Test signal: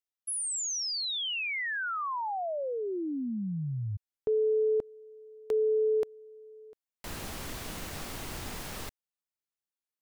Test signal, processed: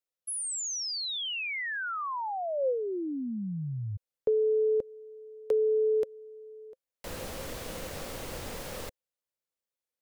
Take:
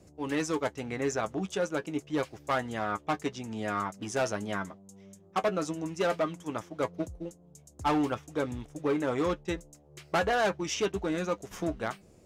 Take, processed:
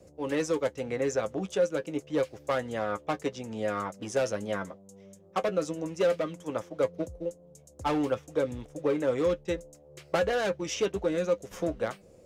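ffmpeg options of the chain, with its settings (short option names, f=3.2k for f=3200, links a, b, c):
-filter_complex "[0:a]equalizer=f=520:w=4.1:g=13,acrossover=split=420|1400[a][b][c];[b]acompressor=threshold=-33dB:ratio=6:attack=78:release=498:knee=1:detection=peak[d];[a][d][c]amix=inputs=3:normalize=0,volume=-1dB"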